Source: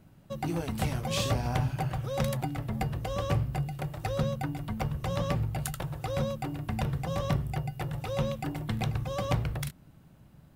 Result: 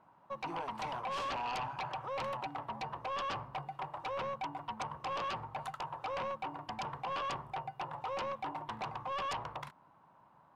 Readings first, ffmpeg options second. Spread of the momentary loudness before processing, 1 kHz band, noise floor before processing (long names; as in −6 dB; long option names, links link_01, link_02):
5 LU, +1.0 dB, −57 dBFS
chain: -filter_complex "[0:a]bandpass=frequency=980:width_type=q:width=5.9:csg=0,asplit=2[link_01][link_02];[link_02]aeval=exprs='0.0422*sin(PI/2*7.08*val(0)/0.0422)':channel_layout=same,volume=-5.5dB[link_03];[link_01][link_03]amix=inputs=2:normalize=0,volume=-3dB"